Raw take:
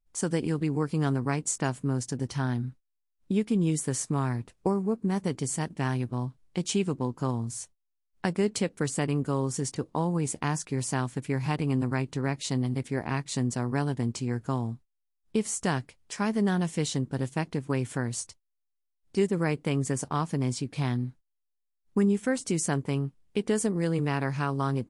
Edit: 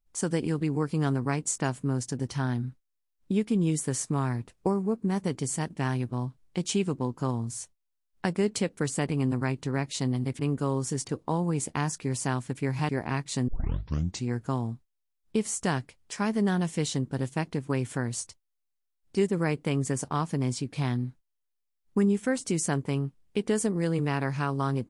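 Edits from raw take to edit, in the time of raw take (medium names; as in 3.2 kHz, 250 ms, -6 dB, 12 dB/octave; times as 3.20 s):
11.56–12.89 s: move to 9.06 s
13.48 s: tape start 0.78 s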